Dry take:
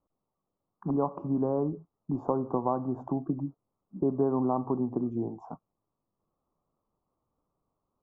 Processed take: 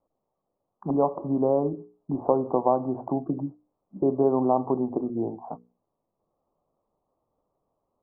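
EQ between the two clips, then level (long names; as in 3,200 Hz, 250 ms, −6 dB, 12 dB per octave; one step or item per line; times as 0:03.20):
low-pass filter 1,100 Hz 12 dB per octave
parametric band 620 Hz +9.5 dB 1.7 octaves
mains-hum notches 60/120/180/240/300/360/420/480 Hz
0.0 dB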